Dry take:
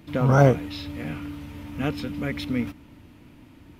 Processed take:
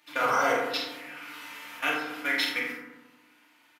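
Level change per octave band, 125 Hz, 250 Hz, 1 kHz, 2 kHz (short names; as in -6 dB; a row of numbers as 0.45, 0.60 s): -31.0, -13.0, +1.5, +6.5 dB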